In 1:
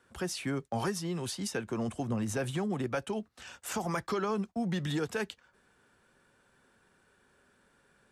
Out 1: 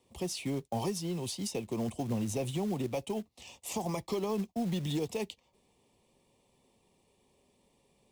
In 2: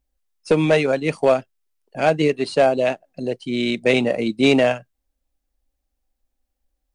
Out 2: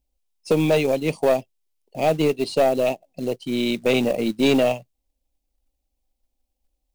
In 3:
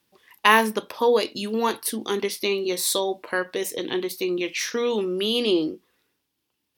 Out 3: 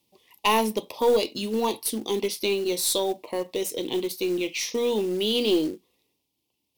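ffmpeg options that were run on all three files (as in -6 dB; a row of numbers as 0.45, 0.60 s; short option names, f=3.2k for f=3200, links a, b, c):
-af "asuperstop=centerf=1500:order=4:qfactor=1.2,acrusher=bits=5:mode=log:mix=0:aa=0.000001,aeval=exprs='(tanh(3.16*val(0)+0.2)-tanh(0.2))/3.16':c=same"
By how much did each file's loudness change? -1.0, -2.0, -2.0 LU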